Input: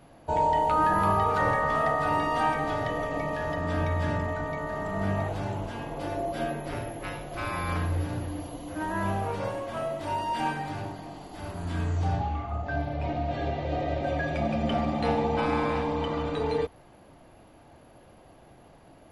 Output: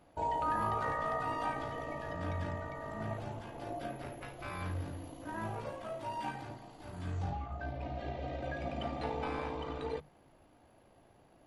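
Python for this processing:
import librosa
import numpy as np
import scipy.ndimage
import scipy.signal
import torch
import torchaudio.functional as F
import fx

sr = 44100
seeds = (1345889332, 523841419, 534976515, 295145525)

y = fx.stretch_grains(x, sr, factor=0.6, grain_ms=36.0)
y = fx.hum_notches(y, sr, base_hz=50, count=4)
y = y * 10.0 ** (-8.5 / 20.0)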